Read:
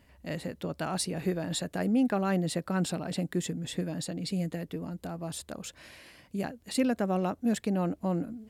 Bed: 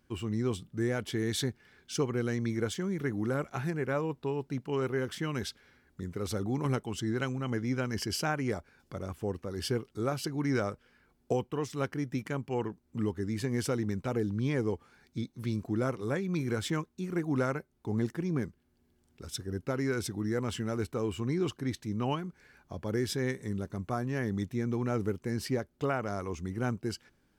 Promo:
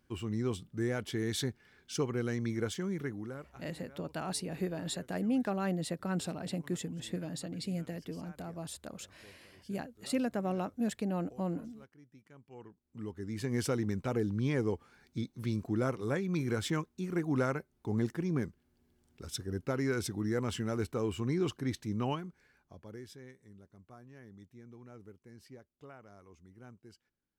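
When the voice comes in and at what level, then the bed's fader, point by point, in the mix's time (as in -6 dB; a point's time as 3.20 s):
3.35 s, -5.0 dB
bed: 2.96 s -2.5 dB
3.84 s -25 dB
12.20 s -25 dB
13.56 s -1 dB
22.00 s -1 dB
23.31 s -21 dB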